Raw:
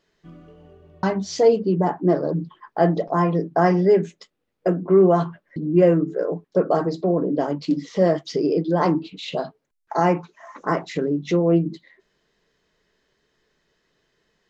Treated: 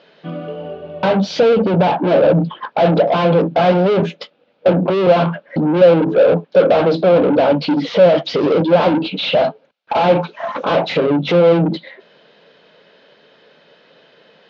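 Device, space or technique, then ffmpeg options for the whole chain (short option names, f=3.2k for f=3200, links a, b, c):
overdrive pedal into a guitar cabinet: -filter_complex "[0:a]asplit=2[a][b];[b]highpass=f=720:p=1,volume=34dB,asoftclip=type=tanh:threshold=-4.5dB[c];[a][c]amix=inputs=2:normalize=0,lowpass=f=3.2k:p=1,volume=-6dB,highpass=110,equalizer=f=160:t=q:w=4:g=4,equalizer=f=230:t=q:w=4:g=3,equalizer=f=370:t=q:w=4:g=-6,equalizer=f=540:t=q:w=4:g=8,equalizer=f=1.1k:t=q:w=4:g=-7,equalizer=f=1.9k:t=q:w=4:g=-10,lowpass=f=4k:w=0.5412,lowpass=f=4k:w=1.3066,volume=-2.5dB"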